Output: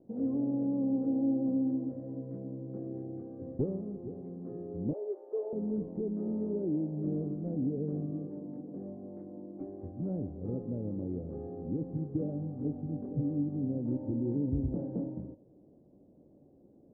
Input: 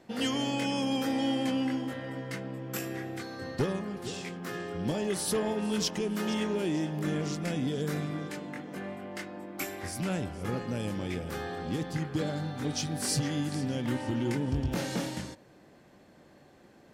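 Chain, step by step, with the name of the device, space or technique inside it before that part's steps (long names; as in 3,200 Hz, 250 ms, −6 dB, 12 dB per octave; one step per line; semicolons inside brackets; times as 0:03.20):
0:04.93–0:05.53: elliptic high-pass filter 400 Hz, stop band 60 dB
under water (low-pass filter 550 Hz 24 dB per octave; parametric band 280 Hz +5 dB 0.2 octaves)
level −2.5 dB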